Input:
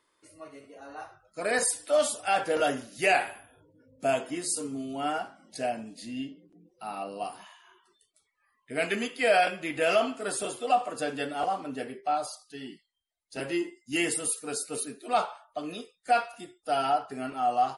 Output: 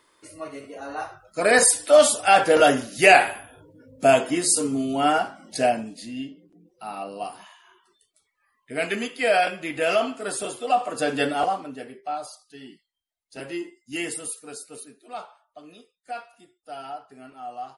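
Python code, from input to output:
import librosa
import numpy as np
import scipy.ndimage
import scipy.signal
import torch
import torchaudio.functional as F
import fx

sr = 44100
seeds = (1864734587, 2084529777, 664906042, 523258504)

y = fx.gain(x, sr, db=fx.line((5.67, 10.0), (6.11, 2.5), (10.7, 2.5), (11.28, 10.0), (11.77, -2.0), (14.16, -2.0), (15.12, -10.0)))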